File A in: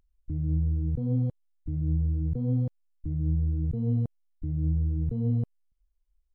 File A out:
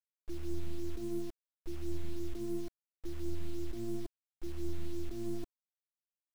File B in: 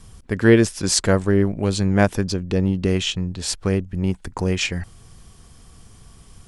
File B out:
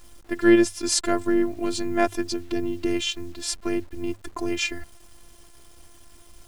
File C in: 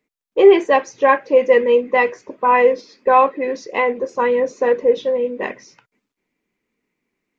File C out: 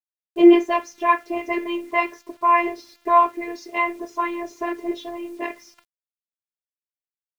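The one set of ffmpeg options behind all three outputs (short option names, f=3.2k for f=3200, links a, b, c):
-af "afftfilt=real='hypot(re,im)*cos(PI*b)':imag='0':win_size=512:overlap=0.75,bandreject=f=50:t=h:w=6,bandreject=f=100:t=h:w=6,acrusher=bits=8:mix=0:aa=0.000001"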